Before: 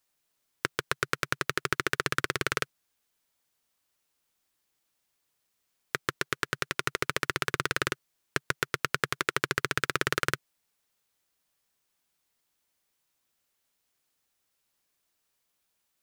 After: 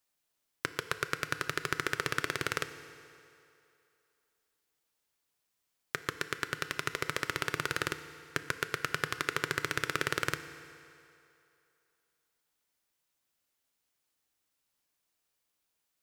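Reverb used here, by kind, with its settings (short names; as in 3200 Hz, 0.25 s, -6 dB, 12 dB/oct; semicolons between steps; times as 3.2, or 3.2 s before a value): FDN reverb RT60 2.7 s, low-frequency decay 0.75×, high-frequency decay 0.85×, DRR 10 dB; gain -4 dB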